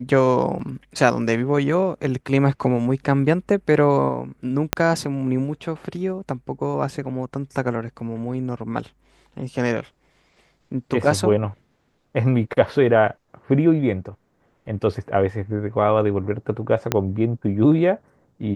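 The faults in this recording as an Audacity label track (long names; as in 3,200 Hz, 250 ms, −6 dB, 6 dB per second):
0.590000	0.600000	drop-out 5.3 ms
4.730000	4.730000	click −1 dBFS
16.920000	16.920000	click −4 dBFS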